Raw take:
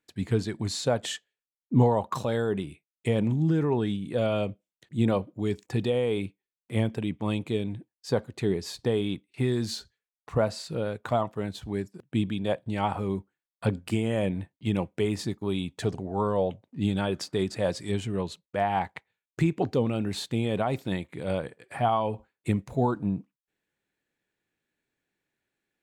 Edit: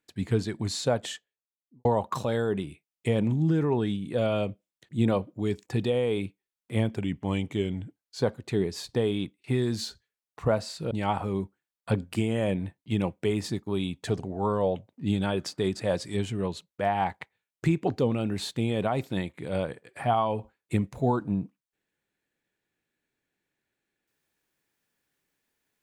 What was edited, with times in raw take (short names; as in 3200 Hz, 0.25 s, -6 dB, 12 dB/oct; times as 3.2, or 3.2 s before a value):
0.88–1.85 studio fade out
6.96–8.12 speed 92%
10.81–12.66 cut